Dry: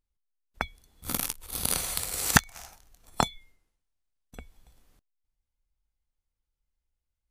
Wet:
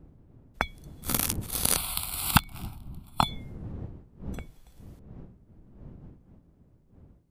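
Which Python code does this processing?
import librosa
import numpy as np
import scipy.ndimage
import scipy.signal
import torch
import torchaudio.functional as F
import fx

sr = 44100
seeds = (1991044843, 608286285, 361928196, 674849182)

y = fx.dmg_wind(x, sr, seeds[0], corner_hz=170.0, level_db=-46.0)
y = fx.fixed_phaser(y, sr, hz=1800.0, stages=6, at=(1.76, 3.28))
y = y * 10.0 ** (3.0 / 20.0)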